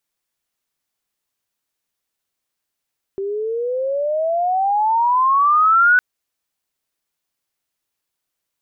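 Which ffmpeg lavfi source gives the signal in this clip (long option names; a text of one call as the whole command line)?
ffmpeg -f lavfi -i "aevalsrc='pow(10,(-9+12*(t/2.81-1))/20)*sin(2*PI*386*2.81/(23.5*log(2)/12)*(exp(23.5*log(2)/12*t/2.81)-1))':duration=2.81:sample_rate=44100" out.wav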